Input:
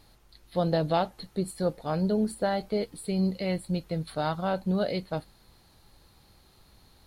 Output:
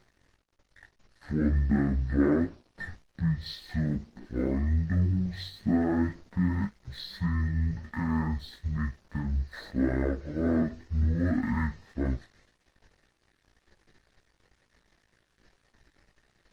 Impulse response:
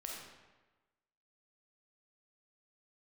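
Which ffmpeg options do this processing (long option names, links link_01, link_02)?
-filter_complex "[0:a]asplit=2[link_01][link_02];[link_02]alimiter=limit=-23dB:level=0:latency=1:release=175,volume=2dB[link_03];[link_01][link_03]amix=inputs=2:normalize=0,asetrate=18846,aresample=44100,aeval=exprs='sgn(val(0))*max(abs(val(0))-0.00335,0)':channel_layout=same,flanger=delay=16:depth=4.5:speed=1.9" -ar 48000 -c:a libopus -b:a 20k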